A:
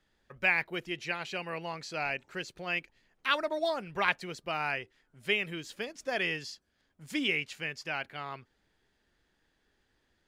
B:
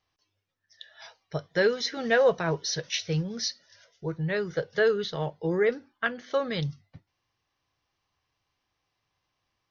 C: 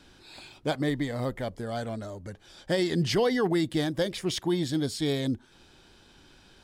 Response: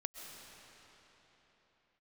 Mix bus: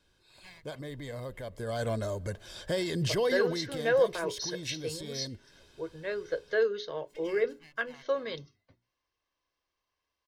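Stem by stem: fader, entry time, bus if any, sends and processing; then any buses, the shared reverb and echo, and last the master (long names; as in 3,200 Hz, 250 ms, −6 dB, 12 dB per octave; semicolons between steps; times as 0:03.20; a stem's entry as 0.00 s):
−19.5 dB, 0.00 s, no send, lower of the sound and its delayed copy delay 1 ms; hum removal 48.65 Hz, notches 12; automatic ducking −23 dB, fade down 1.65 s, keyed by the third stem
−7.0 dB, 1.75 s, no send, low shelf with overshoot 210 Hz −7 dB, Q 3; mains-hum notches 60/120/180/240/300/360/420 Hz
0:01.47 −16.5 dB → 0:01.88 −7.5 dB → 0:03.31 −7.5 dB → 0:03.99 −16.5 dB, 0.00 s, send −21 dB, automatic gain control gain up to 10.5 dB; high-shelf EQ 10,000 Hz +7 dB; brickwall limiter −16 dBFS, peak gain reduction 10 dB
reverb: on, pre-delay 90 ms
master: comb filter 1.9 ms, depth 44%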